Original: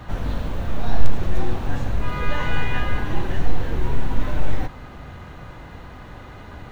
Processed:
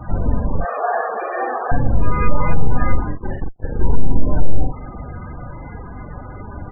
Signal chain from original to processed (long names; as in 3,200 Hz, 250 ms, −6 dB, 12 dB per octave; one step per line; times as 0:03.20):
0:00.60–0:01.72: loudspeaker in its box 450–2,900 Hz, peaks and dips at 460 Hz +6 dB, 700 Hz +9 dB, 1,200 Hz +9 dB, 1,700 Hz +7 dB, 2,400 Hz +8 dB
0:02.95–0:03.81: tube saturation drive 20 dB, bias 0.25
double-tracking delay 43 ms −4 dB
treble cut that deepens with the level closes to 690 Hz, closed at −8 dBFS
spectral peaks only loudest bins 32
boost into a limiter +7 dB
level −1 dB